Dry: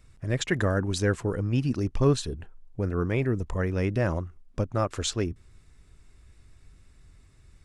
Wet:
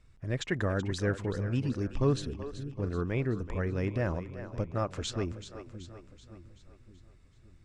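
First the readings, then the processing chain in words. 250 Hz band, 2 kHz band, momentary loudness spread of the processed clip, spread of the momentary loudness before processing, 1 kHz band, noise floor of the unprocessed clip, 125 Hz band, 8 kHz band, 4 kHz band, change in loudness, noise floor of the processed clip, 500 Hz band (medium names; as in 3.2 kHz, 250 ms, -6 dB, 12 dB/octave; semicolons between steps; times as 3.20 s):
-4.5 dB, -5.0 dB, 16 LU, 9 LU, -5.0 dB, -57 dBFS, -4.5 dB, -9.0 dB, -6.0 dB, -5.0 dB, -59 dBFS, -5.0 dB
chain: distance through air 54 m; two-band feedback delay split 310 Hz, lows 567 ms, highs 380 ms, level -11.5 dB; trim -5 dB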